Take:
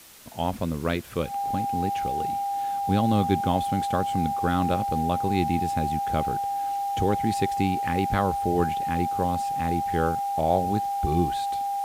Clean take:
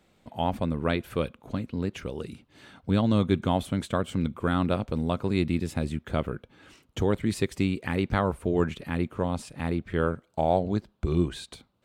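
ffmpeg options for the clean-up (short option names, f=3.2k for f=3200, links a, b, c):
-af "bandreject=f=800:w=30,afwtdn=0.004"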